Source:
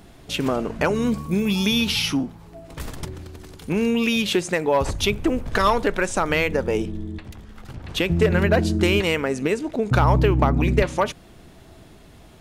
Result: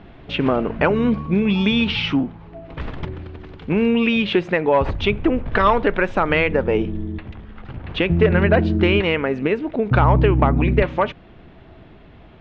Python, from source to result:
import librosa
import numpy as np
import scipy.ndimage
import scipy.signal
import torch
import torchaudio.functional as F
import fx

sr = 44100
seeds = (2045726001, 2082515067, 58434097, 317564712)

p1 = scipy.signal.sosfilt(scipy.signal.butter(4, 3100.0, 'lowpass', fs=sr, output='sos'), x)
p2 = fx.rider(p1, sr, range_db=3, speed_s=2.0)
p3 = p1 + (p2 * 10.0 ** (2.5 / 20.0))
y = p3 * 10.0 ** (-4.5 / 20.0)